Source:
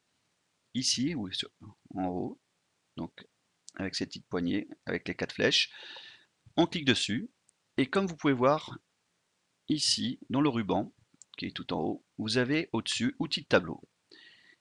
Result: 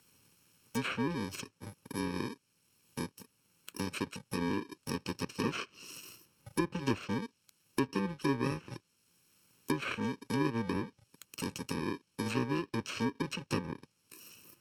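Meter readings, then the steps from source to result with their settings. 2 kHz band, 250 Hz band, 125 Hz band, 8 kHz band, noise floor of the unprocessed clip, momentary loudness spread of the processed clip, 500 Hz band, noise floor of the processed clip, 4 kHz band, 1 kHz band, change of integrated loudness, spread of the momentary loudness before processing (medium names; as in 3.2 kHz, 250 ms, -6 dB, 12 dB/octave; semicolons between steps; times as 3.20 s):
-5.5 dB, -4.0 dB, -1.5 dB, -8.0 dB, -77 dBFS, 16 LU, -6.5 dB, -76 dBFS, -12.5 dB, -3.5 dB, -6.0 dB, 16 LU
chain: bit-reversed sample order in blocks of 64 samples; low-pass that closes with the level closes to 2 kHz, closed at -25.5 dBFS; three bands compressed up and down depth 40%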